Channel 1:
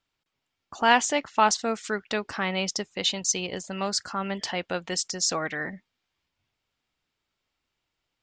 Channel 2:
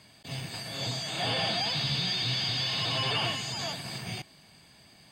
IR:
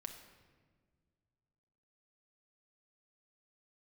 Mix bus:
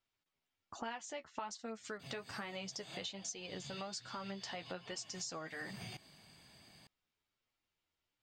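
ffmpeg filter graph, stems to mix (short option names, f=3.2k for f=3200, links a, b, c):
-filter_complex "[0:a]flanger=delay=8.1:depth=4.7:regen=23:speed=1.2:shape=triangular,volume=-4.5dB,asplit=2[a][b];[1:a]acompressor=threshold=-37dB:ratio=12,adelay=1750,volume=-5.5dB[c];[b]apad=whole_len=302931[d];[c][d]sidechaincompress=threshold=-38dB:ratio=8:attack=9:release=371[e];[a][e]amix=inputs=2:normalize=0,acompressor=threshold=-41dB:ratio=8"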